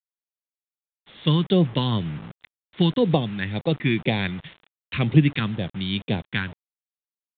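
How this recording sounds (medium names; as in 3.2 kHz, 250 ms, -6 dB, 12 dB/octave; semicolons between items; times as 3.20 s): phasing stages 2, 2 Hz, lowest notch 600–1300 Hz; a quantiser's noise floor 8-bit, dither none; µ-law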